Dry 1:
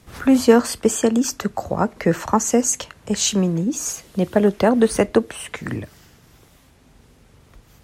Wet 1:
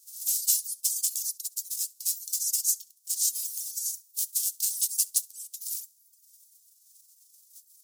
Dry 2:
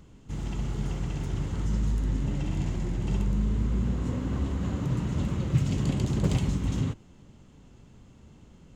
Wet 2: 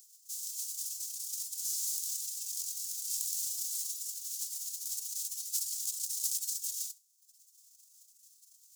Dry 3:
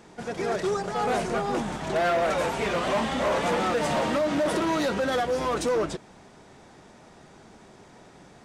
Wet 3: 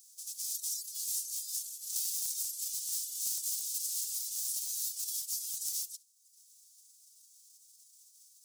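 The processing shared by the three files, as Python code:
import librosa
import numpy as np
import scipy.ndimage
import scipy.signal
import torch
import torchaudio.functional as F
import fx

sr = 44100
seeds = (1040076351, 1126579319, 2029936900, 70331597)

p1 = fx.envelope_flatten(x, sr, power=0.3)
p2 = scipy.signal.sosfilt(scipy.signal.cheby2(4, 70, 1300.0, 'highpass', fs=sr, output='sos'), p1)
p3 = p2 + fx.room_flutter(p2, sr, wall_m=11.4, rt60_s=0.31, dry=0)
p4 = fx.dereverb_blind(p3, sr, rt60_s=0.88)
y = p4 * 10.0 ** (-2.5 / 20.0)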